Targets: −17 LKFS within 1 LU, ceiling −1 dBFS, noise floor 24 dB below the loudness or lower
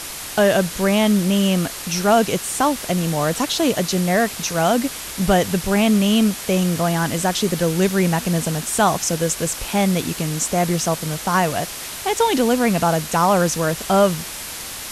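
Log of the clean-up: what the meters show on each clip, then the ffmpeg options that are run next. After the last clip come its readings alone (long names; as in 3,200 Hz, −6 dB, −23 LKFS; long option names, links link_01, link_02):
background noise floor −32 dBFS; target noise floor −43 dBFS; integrated loudness −19.0 LKFS; sample peak −3.5 dBFS; target loudness −17.0 LKFS
→ -af "afftdn=noise_reduction=11:noise_floor=-32"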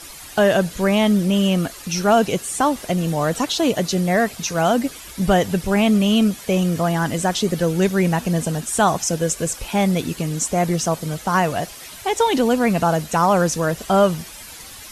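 background noise floor −38 dBFS; target noise floor −44 dBFS
→ -af "afftdn=noise_reduction=6:noise_floor=-38"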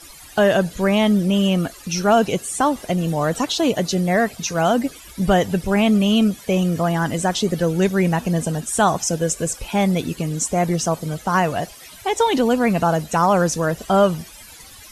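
background noise floor −42 dBFS; target noise floor −44 dBFS
→ -af "afftdn=noise_reduction=6:noise_floor=-42"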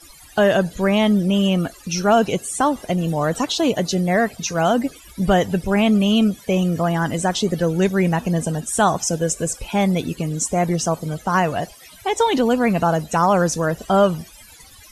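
background noise floor −45 dBFS; integrated loudness −19.5 LKFS; sample peak −4.0 dBFS; target loudness −17.0 LKFS
→ -af "volume=2.5dB"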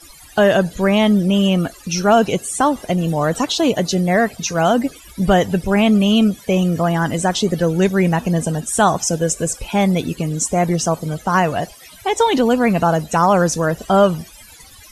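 integrated loudness −17.0 LKFS; sample peak −1.5 dBFS; background noise floor −42 dBFS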